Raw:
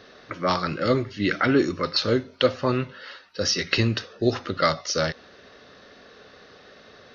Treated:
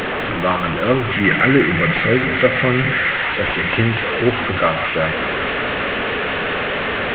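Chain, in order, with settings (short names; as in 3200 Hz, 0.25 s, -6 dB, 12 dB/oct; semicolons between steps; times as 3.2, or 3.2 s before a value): delta modulation 16 kbps, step -20.5 dBFS; 1.11–3.12 thirty-one-band EQ 160 Hz +10 dB, 1000 Hz -7 dB, 2000 Hz +11 dB; thin delay 0.2 s, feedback 85%, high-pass 1500 Hz, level -6 dB; gain +5 dB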